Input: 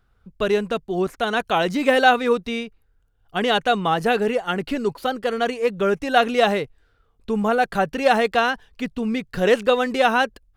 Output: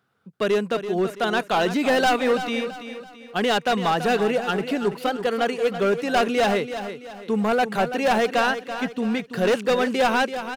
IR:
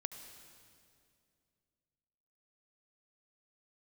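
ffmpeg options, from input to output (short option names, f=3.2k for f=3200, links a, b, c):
-af "highpass=f=140:w=0.5412,highpass=f=140:w=1.3066,volume=16dB,asoftclip=hard,volume=-16dB,aecho=1:1:333|666|999|1332:0.299|0.119|0.0478|0.0191"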